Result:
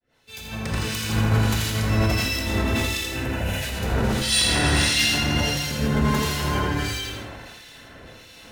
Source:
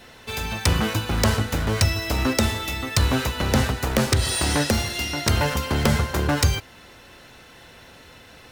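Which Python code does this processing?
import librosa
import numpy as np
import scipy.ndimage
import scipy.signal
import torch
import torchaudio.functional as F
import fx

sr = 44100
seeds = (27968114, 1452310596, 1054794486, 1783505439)

y = fx.fade_in_head(x, sr, length_s=0.87)
y = fx.rotary_switch(y, sr, hz=5.0, then_hz=0.9, switch_at_s=4.16)
y = fx.over_compress(y, sr, threshold_db=-25.0, ratio=-0.5)
y = fx.fixed_phaser(y, sr, hz=1200.0, stages=6, at=(3.11, 3.54), fade=0.02)
y = fx.peak_eq(y, sr, hz=2500.0, db=7.5, octaves=2.6, at=(4.19, 5.02))
y = fx.comb(y, sr, ms=4.7, depth=0.88, at=(5.62, 6.25))
y = fx.echo_feedback(y, sr, ms=82, feedback_pct=59, wet_db=-6)
y = fx.rev_gated(y, sr, seeds[0], gate_ms=480, shape='flat', drr_db=-4.0)
y = fx.harmonic_tremolo(y, sr, hz=1.5, depth_pct=70, crossover_hz=2100.0)
y = fx.sustainer(y, sr, db_per_s=25.0)
y = F.gain(torch.from_numpy(y), -1.5).numpy()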